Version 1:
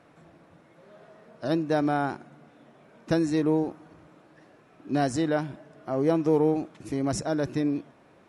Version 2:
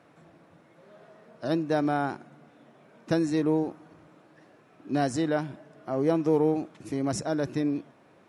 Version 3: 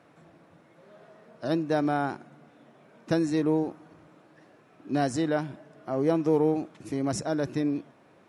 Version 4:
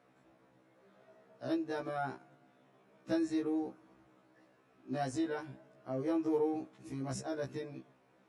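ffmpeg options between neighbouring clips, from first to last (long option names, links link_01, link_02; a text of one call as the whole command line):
ffmpeg -i in.wav -af "highpass=84,volume=-1dB" out.wav
ffmpeg -i in.wav -af anull out.wav
ffmpeg -i in.wav -af "afftfilt=real='re*1.73*eq(mod(b,3),0)':imag='im*1.73*eq(mod(b,3),0)':win_size=2048:overlap=0.75,volume=-7dB" out.wav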